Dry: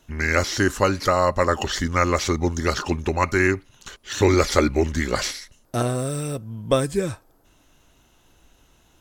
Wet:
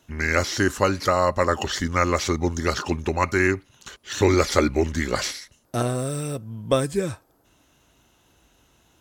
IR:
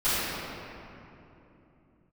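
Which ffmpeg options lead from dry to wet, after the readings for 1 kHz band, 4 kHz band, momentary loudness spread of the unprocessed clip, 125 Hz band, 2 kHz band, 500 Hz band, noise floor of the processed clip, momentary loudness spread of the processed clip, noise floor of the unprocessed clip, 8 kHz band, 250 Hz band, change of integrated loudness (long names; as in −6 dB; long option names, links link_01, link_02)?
−1.0 dB, −1.0 dB, 11 LU, −1.5 dB, −1.0 dB, −1.0 dB, −62 dBFS, 11 LU, −59 dBFS, −1.0 dB, −1.0 dB, −1.0 dB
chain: -af "highpass=56,volume=-1dB"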